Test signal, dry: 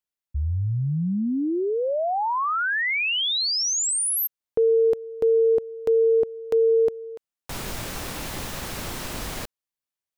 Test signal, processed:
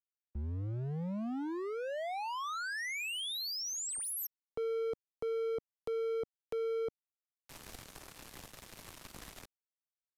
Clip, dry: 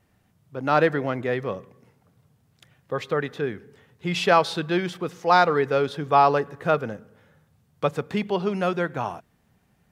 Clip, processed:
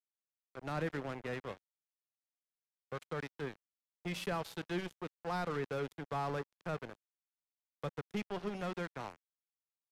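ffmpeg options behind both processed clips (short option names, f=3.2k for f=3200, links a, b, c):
-filter_complex "[0:a]aeval=exprs='sgn(val(0))*max(abs(val(0))-0.0335,0)':c=same,acrossover=split=240[a][b];[b]acompressor=threshold=-27dB:ratio=4:attack=0.11:release=23:knee=2.83:detection=peak[c];[a][c]amix=inputs=2:normalize=0,aresample=32000,aresample=44100,volume=-7.5dB"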